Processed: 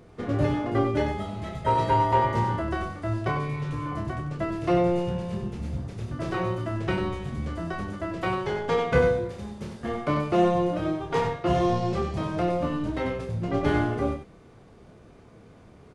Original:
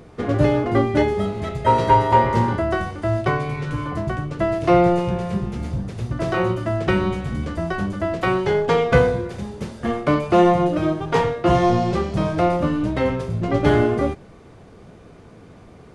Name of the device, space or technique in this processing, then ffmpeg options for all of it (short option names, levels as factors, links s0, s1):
slapback doubling: -filter_complex "[0:a]asplit=3[s0][s1][s2];[s1]adelay=28,volume=0.531[s3];[s2]adelay=95,volume=0.447[s4];[s0][s3][s4]amix=inputs=3:normalize=0,volume=0.398"